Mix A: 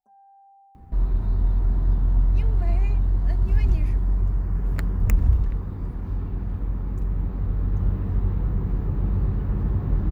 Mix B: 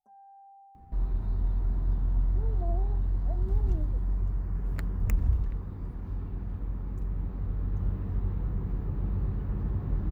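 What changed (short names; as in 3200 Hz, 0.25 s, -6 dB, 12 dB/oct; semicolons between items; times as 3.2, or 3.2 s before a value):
speech: add steep low-pass 860 Hz; second sound -7.0 dB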